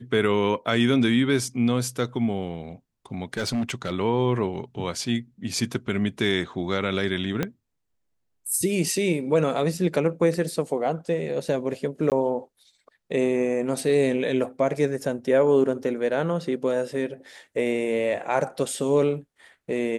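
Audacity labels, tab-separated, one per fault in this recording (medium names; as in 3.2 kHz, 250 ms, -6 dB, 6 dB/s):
3.330000	3.920000	clipped -21.5 dBFS
7.430000	7.430000	pop -11 dBFS
12.100000	12.120000	dropout 18 ms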